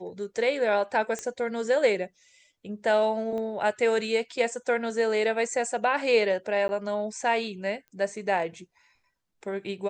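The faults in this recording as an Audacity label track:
1.190000	1.190000	click −19 dBFS
3.380000	3.380000	click −25 dBFS
6.680000	6.690000	drop-out 10 ms
7.880000	7.880000	click −37 dBFS

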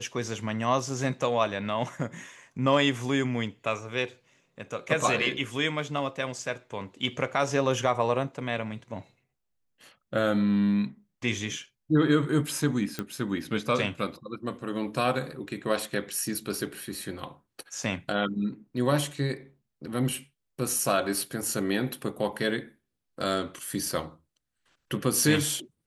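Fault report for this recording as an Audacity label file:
12.990000	12.990000	click −16 dBFS

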